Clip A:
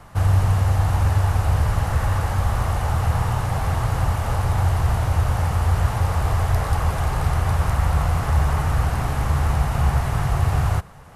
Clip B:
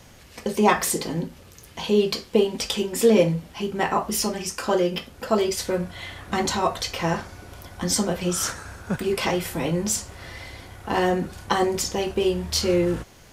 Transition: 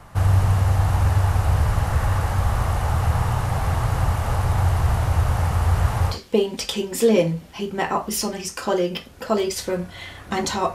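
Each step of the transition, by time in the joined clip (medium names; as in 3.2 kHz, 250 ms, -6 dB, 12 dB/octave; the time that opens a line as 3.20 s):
clip A
6.13 s: go over to clip B from 2.14 s, crossfade 0.12 s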